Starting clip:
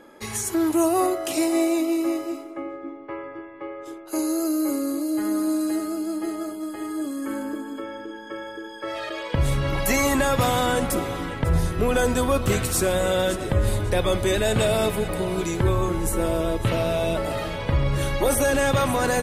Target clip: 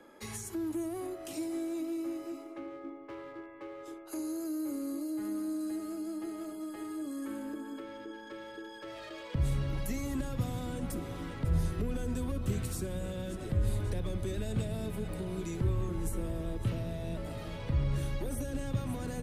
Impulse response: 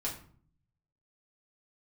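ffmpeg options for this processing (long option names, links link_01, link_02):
-filter_complex "[0:a]acrossover=split=280[link_01][link_02];[link_02]acompressor=threshold=-33dB:ratio=6[link_03];[link_01][link_03]amix=inputs=2:normalize=0,acrossover=split=140|470|3500[link_04][link_05][link_06][link_07];[link_06]asoftclip=type=hard:threshold=-38.5dB[link_08];[link_04][link_05][link_08][link_07]amix=inputs=4:normalize=0,volume=-7.5dB"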